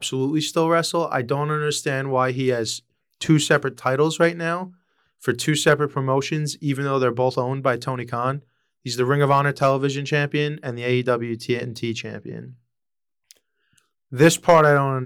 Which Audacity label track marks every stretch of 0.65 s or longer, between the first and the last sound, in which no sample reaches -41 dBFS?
12.530000	13.310000	silence